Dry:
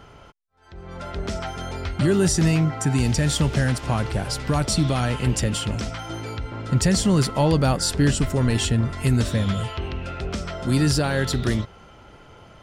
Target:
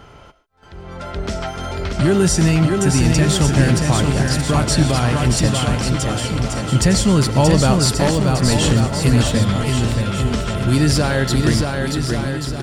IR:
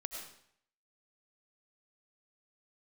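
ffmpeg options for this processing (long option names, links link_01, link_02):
-filter_complex "[0:a]asettb=1/sr,asplit=3[link_01][link_02][link_03];[link_01]atrim=end=7.974[link_04];[link_02]atrim=start=7.97:end=8.42,asetpts=PTS-STARTPTS,afade=type=in:duration=0.004:curve=qsin,afade=type=out:start_time=0.446:duration=0.004:curve=qsin,aeval=exprs='0.355*(cos(1*acos(clip(val(0)/0.355,-1,1)))-cos(1*PI/2))+0.141*(cos(3*acos(clip(val(0)/0.355,-1,1)))-cos(3*PI/2))':channel_layout=same[link_05];[link_03]atrim=start=8.416[link_06];[link_04][link_05]acrossfade=duration=0.004:curve1=hsin:curve2=qsin[link_07];[link_07][link_06]acrossfade=duration=0.004:curve1=qsin:curve2=hsin,aecho=1:1:630|1134|1537|1860|2118:0.631|0.398|0.251|0.158|0.1,asplit=2[link_08][link_09];[1:a]atrim=start_sample=2205,atrim=end_sample=6615[link_10];[link_09][link_10]afir=irnorm=-1:irlink=0,volume=-6dB[link_11];[link_08][link_11]amix=inputs=2:normalize=0,volume=1.5dB"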